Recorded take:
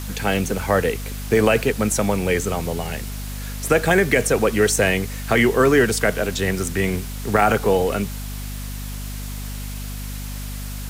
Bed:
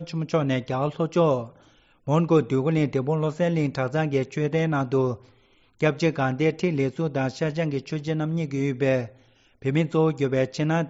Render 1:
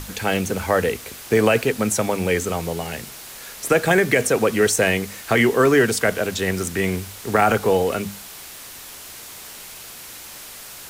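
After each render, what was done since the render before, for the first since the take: hum notches 50/100/150/200/250 Hz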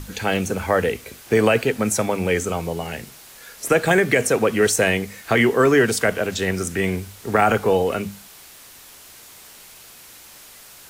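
noise print and reduce 6 dB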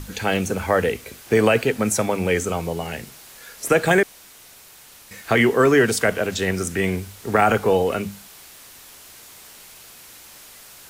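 4.03–5.11 s: room tone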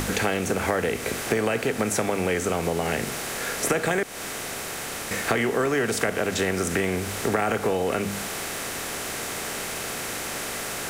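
spectral levelling over time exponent 0.6; compression 6:1, threshold -21 dBFS, peak gain reduction 11 dB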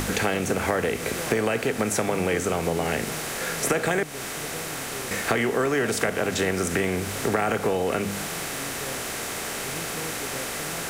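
add bed -17 dB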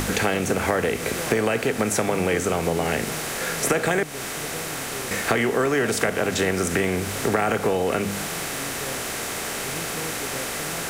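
trim +2 dB

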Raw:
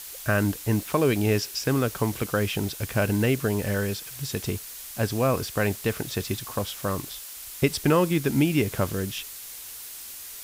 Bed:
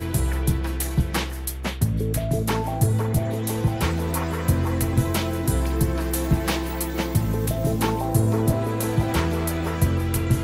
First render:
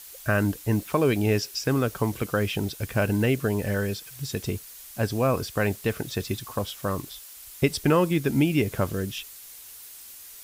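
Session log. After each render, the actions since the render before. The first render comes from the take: noise reduction 6 dB, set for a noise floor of -40 dBFS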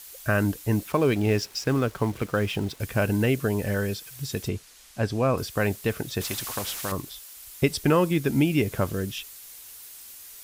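0.92–2.80 s: hysteresis with a dead band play -37 dBFS; 4.48–5.38 s: distance through air 51 m; 6.21–6.92 s: spectrum-flattening compressor 2:1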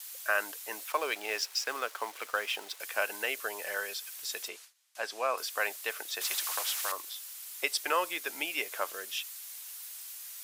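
Bessel high-pass 900 Hz, order 4; gate with hold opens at -39 dBFS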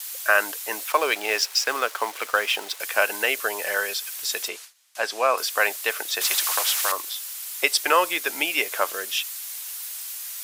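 trim +10 dB

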